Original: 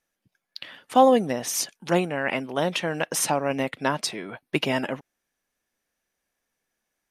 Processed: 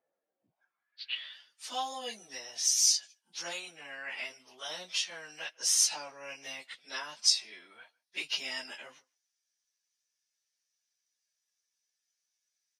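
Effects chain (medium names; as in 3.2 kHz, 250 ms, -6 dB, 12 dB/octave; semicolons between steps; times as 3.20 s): plain phase-vocoder stretch 1.8×; band-pass sweep 570 Hz -> 5.4 kHz, 0.41–1.42 s; speakerphone echo 150 ms, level -27 dB; trim +7.5 dB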